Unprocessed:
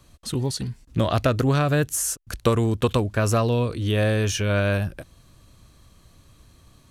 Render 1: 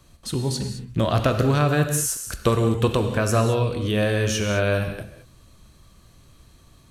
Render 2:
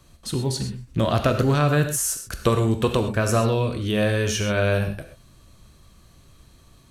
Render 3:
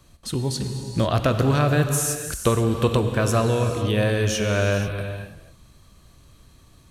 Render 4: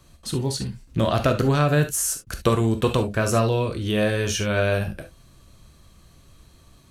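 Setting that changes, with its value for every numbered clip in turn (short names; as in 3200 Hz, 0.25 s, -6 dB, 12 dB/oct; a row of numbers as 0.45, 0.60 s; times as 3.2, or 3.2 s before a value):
non-linear reverb, gate: 240, 150, 520, 90 ms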